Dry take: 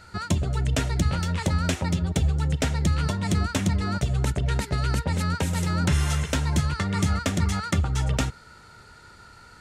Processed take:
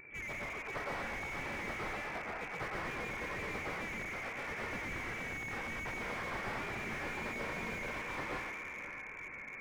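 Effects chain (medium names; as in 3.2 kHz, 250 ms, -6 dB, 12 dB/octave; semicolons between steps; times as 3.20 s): frequency axis rescaled in octaves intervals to 90%; steep high-pass 940 Hz 48 dB/octave; wow and flutter 150 cents; 6.82–7.87 s: doubling 35 ms -6 dB; echo that smears into a reverb 581 ms, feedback 59%, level -13.5 dB; reverberation RT60 1.0 s, pre-delay 106 ms, DRR -3.5 dB; frequency inversion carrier 3.4 kHz; slew-rate limiter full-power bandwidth 20 Hz; trim -1 dB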